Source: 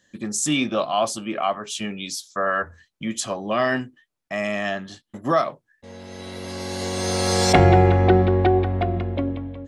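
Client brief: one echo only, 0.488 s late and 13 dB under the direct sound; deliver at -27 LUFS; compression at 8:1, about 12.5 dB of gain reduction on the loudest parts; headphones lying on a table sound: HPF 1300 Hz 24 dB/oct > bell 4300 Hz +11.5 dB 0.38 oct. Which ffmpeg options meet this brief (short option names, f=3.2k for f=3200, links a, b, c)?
-af "acompressor=threshold=-23dB:ratio=8,highpass=f=1.3k:w=0.5412,highpass=f=1.3k:w=1.3066,equalizer=f=4.3k:t=o:w=0.38:g=11.5,aecho=1:1:488:0.224,volume=2.5dB"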